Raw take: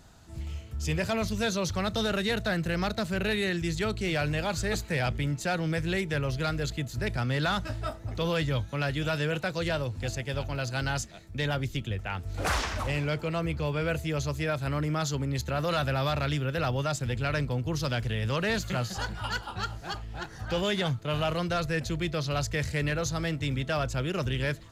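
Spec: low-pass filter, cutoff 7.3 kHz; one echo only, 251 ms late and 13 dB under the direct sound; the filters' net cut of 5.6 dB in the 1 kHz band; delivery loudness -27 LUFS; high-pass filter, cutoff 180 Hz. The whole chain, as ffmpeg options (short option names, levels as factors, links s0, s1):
-af "highpass=180,lowpass=7300,equalizer=f=1000:t=o:g=-8.5,aecho=1:1:251:0.224,volume=2"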